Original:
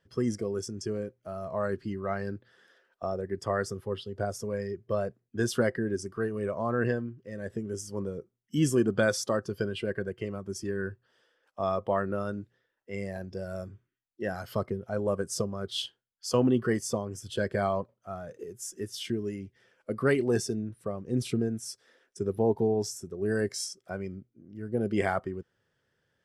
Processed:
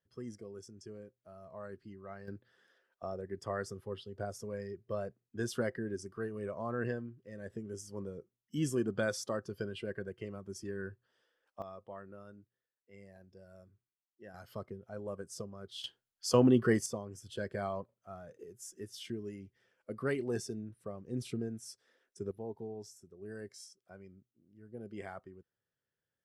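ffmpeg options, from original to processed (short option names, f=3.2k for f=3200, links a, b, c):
-af "asetnsamples=n=441:p=0,asendcmd='2.28 volume volume -8dB;11.62 volume volume -19.5dB;14.34 volume volume -12.5dB;15.84 volume volume -0.5dB;16.86 volume volume -9dB;22.31 volume volume -17dB',volume=-15.5dB"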